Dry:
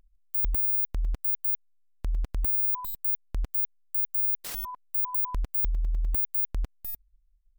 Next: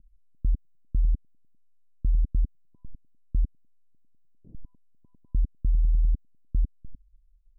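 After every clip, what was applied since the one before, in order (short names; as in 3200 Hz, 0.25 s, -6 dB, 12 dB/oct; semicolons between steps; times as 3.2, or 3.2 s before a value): inverse Chebyshev low-pass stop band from 1600 Hz, stop band 80 dB; gain +5.5 dB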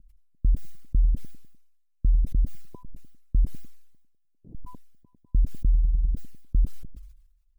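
reverb removal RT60 1.5 s; sustainer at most 63 dB/s; gain +3 dB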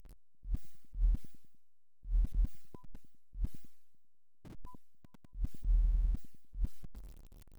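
zero-crossing step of -40 dBFS; attack slew limiter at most 220 dB/s; gain -8.5 dB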